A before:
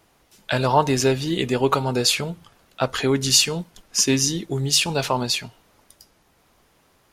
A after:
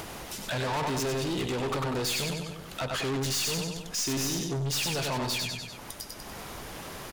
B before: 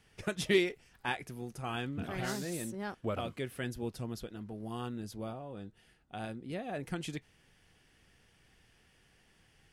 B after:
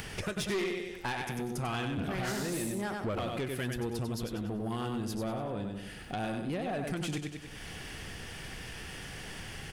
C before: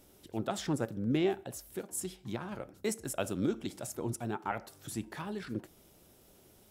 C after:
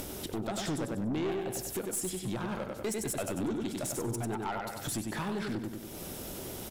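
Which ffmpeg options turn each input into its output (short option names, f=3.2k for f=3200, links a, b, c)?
-af "aecho=1:1:96|192|288|384:0.501|0.185|0.0686|0.0254,acompressor=mode=upward:threshold=-23dB:ratio=2.5,aeval=exprs='(tanh(25.1*val(0)+0.15)-tanh(0.15))/25.1':c=same"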